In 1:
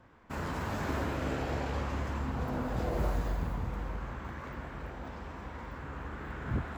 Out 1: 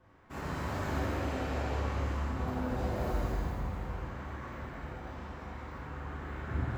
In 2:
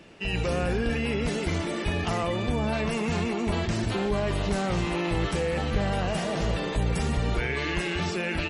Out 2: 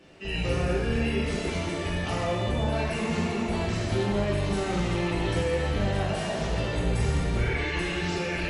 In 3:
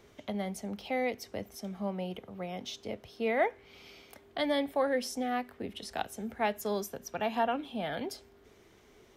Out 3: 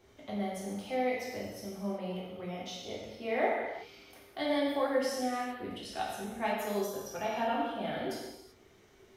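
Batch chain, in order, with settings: gated-style reverb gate 410 ms falling, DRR -6 dB; trim -7.5 dB

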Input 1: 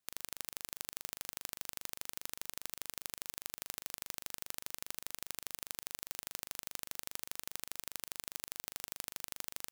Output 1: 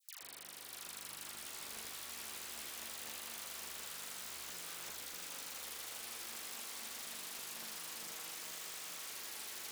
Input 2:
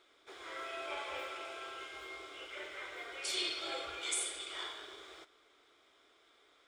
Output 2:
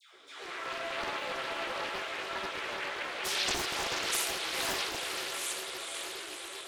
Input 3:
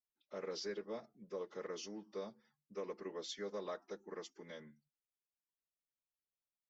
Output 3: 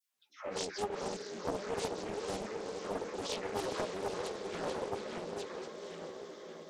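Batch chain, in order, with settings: backward echo that repeats 689 ms, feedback 41%, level -5 dB; in parallel at +1.5 dB: compression, threshold -54 dBFS; on the sum: saturation -20.5 dBFS; high-pass 100 Hz 12 dB/octave; hum notches 50/100/150/200 Hz; phase dispersion lows, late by 148 ms, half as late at 1 kHz; on a send: echo that smears into a reverb 495 ms, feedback 66%, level -5.5 dB; on the sum: vibrato 8.3 Hz 6.9 cents; chorus voices 4, 0.77 Hz, delay 14 ms, depth 3.7 ms; loudspeaker Doppler distortion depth 0.77 ms; trim +6.5 dB

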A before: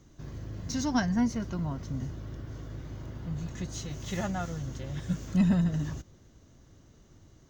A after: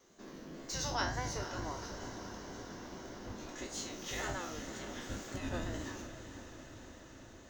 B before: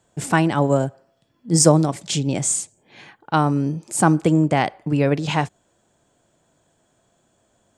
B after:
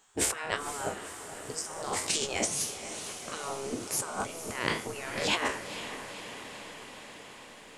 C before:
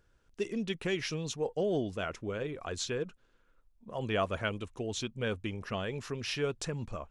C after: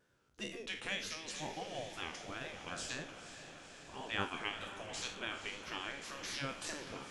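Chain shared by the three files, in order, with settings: spectral sustain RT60 0.44 s; compressor with a negative ratio -24 dBFS, ratio -1; wow and flutter 70 cents; spectral gate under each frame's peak -10 dB weak; echo that smears into a reverb 492 ms, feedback 72%, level -10.5 dB; trim -2 dB

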